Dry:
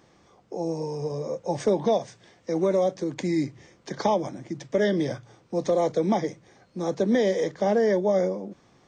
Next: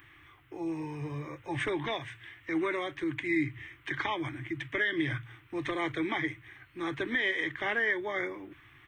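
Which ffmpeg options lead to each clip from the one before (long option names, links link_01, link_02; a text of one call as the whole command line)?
ffmpeg -i in.wav -af "firequalizer=gain_entry='entry(130,0);entry(190,-30);entry(300,-3);entry(500,-24);entry(1100,-2);entry(1900,9);entry(3200,4);entry(4700,-22);entry(6900,-19);entry(11000,11)':delay=0.05:min_phase=1,alimiter=limit=-23.5dB:level=0:latency=1:release=151,volume=4dB" out.wav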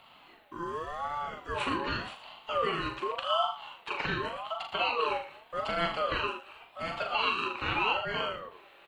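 ffmpeg -i in.wav -af "aecho=1:1:40.82|81.63|116.6:0.562|0.251|0.251,aeval=exprs='val(0)*sin(2*PI*850*n/s+850*0.2/0.86*sin(2*PI*0.86*n/s))':channel_layout=same,volume=2dB" out.wav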